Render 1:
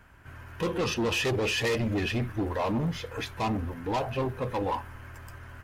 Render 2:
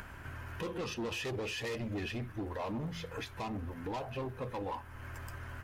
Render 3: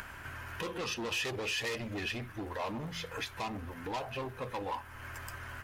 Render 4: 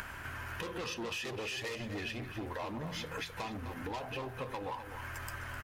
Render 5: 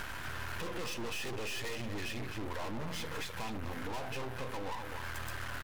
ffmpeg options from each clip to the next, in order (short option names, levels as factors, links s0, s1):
-af "bandreject=f=55.81:t=h:w=4,bandreject=f=111.62:t=h:w=4,bandreject=f=167.43:t=h:w=4,acompressor=mode=upward:threshold=0.0251:ratio=2.5,alimiter=level_in=1.41:limit=0.0631:level=0:latency=1:release=411,volume=0.708,volume=0.596"
-af "tiltshelf=f=690:g=-4.5,volume=1.19"
-filter_complex "[0:a]acompressor=threshold=0.0112:ratio=6,asplit=2[s0][s1];[s1]adelay=256.6,volume=0.355,highshelf=f=4000:g=-5.77[s2];[s0][s2]amix=inputs=2:normalize=0,volume=1.26"
-af "aeval=exprs='(tanh(70.8*val(0)+0.7)-tanh(0.7))/70.8':c=same,aeval=exprs='max(val(0),0)':c=same,volume=5.31"